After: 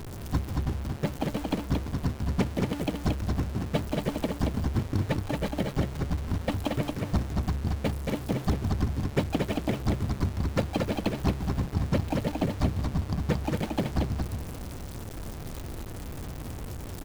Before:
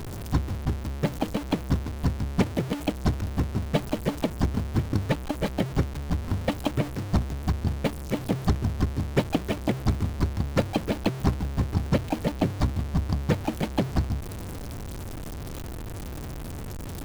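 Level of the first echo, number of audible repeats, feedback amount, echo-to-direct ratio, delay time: -3.5 dB, 1, no steady repeat, -3.5 dB, 0.227 s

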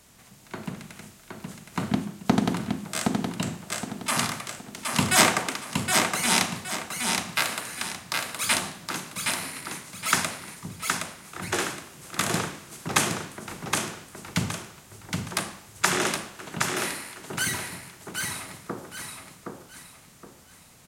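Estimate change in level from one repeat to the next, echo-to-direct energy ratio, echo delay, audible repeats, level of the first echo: -9.5 dB, -3.5 dB, 0.768 s, 4, -4.0 dB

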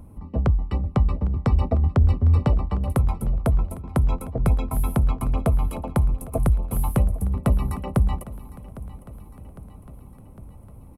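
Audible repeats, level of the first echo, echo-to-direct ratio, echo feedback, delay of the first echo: 4, -18.0 dB, -16.0 dB, 59%, 0.806 s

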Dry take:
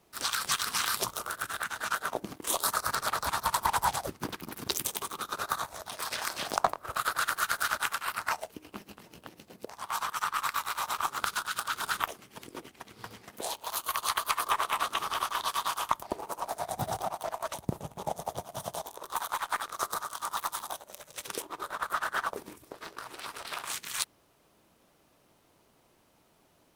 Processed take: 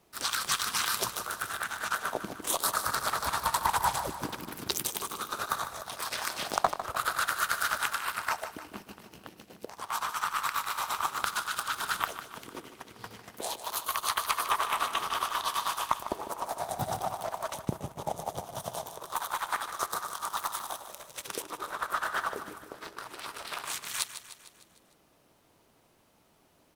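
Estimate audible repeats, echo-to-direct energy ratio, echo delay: 5, -10.0 dB, 0.151 s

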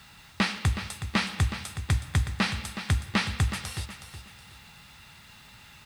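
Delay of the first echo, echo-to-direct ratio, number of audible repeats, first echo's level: 0.369 s, -10.0 dB, 3, -10.5 dB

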